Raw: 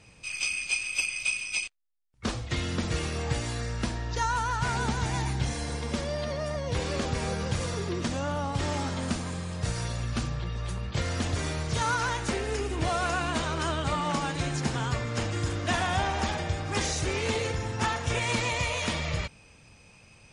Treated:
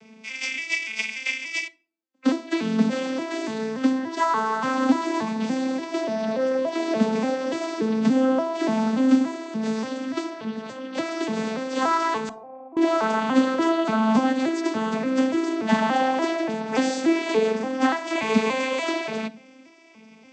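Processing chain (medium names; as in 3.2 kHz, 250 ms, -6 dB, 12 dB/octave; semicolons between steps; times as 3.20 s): vocoder on a broken chord minor triad, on A3, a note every 289 ms; 12.29–12.77 s: cascade formant filter a; simulated room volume 390 m³, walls furnished, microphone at 0.3 m; trim +8 dB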